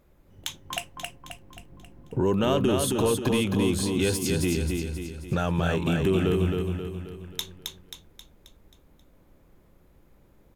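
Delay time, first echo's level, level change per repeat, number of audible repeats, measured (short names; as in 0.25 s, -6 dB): 0.267 s, -4.0 dB, -6.0 dB, 6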